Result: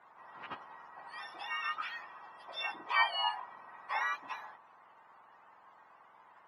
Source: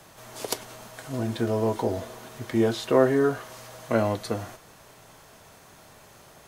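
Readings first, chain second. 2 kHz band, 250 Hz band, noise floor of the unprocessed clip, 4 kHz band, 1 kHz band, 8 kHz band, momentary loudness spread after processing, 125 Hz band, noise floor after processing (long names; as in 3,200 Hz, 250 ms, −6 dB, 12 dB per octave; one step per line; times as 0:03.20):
+1.5 dB, −35.5 dB, −52 dBFS, 0.0 dB, −2.5 dB, below −25 dB, 21 LU, below −35 dB, −61 dBFS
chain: frequency axis turned over on the octave scale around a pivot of 1,100 Hz
four-pole ladder band-pass 1,100 Hz, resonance 55%
level +7 dB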